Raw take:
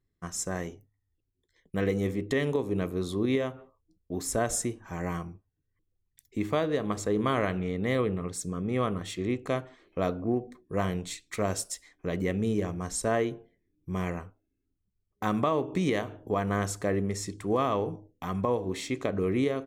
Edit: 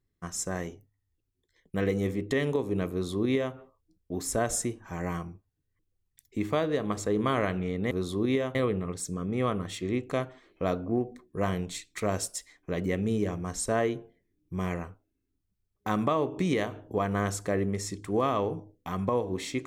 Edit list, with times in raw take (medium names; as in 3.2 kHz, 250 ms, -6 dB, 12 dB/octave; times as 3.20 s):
2.91–3.55 s: copy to 7.91 s